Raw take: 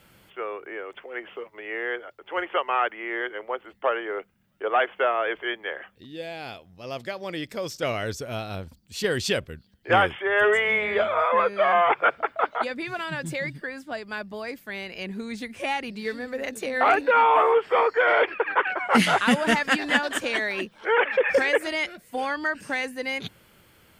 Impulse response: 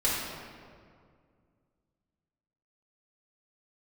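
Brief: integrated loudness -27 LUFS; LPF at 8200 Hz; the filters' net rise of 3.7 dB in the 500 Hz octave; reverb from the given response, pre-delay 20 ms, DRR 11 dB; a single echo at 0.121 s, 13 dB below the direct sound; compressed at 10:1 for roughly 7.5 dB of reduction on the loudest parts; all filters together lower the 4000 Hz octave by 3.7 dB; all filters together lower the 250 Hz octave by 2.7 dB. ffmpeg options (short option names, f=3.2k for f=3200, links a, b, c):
-filter_complex "[0:a]lowpass=8.2k,equalizer=f=250:t=o:g=-5,equalizer=f=500:t=o:g=5.5,equalizer=f=4k:t=o:g=-5.5,acompressor=threshold=-20dB:ratio=10,aecho=1:1:121:0.224,asplit=2[a][b];[1:a]atrim=start_sample=2205,adelay=20[c];[b][c]afir=irnorm=-1:irlink=0,volume=-22dB[d];[a][d]amix=inputs=2:normalize=0"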